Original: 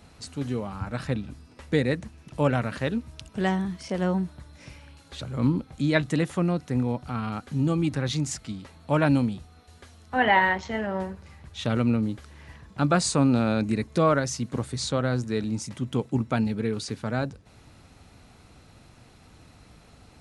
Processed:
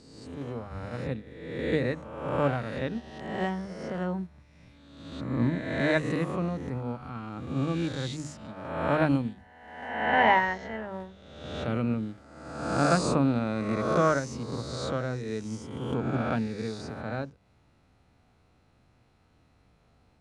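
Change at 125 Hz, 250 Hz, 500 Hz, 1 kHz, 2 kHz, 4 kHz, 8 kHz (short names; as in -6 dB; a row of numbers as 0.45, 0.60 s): -4.5, -4.0, -1.5, -0.5, -1.5, -5.0, -8.5 dB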